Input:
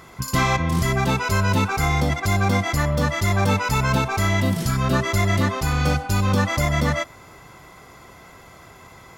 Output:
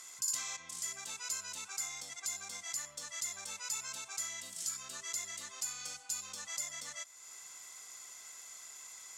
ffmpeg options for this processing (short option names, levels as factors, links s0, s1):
-af "acompressor=threshold=0.0112:ratio=2,bandpass=f=7500:t=q:w=3.2:csg=0,volume=3.76"